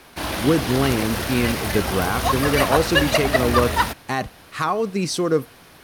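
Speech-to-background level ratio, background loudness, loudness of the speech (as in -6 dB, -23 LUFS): -0.5 dB, -22.5 LUFS, -23.0 LUFS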